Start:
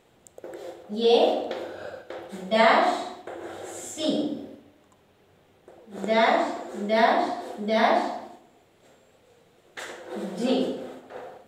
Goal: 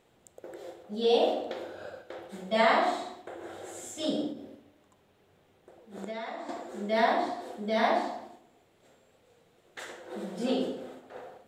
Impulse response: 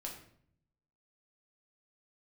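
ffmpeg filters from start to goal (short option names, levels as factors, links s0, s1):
-filter_complex "[0:a]asettb=1/sr,asplit=3[s0][s1][s2];[s0]atrim=end=4.304[s3];[s1]atrim=start=4.3:end=6.49,asetpts=PTS-STARTPTS,afade=t=in:d=0.004:c=qsin,afade=t=out:st=2.186:d=0.004:c=qsin,acompressor=threshold=0.0282:ratio=6[s4];[s2]atrim=start=6.486[s5];[s3][s4]acrossfade=d=0.004:c1=hsin:c2=qsin[s6];[s6][s5]acrossfade=d=0.004:c1=qsin:c2=hsin,volume=0.562"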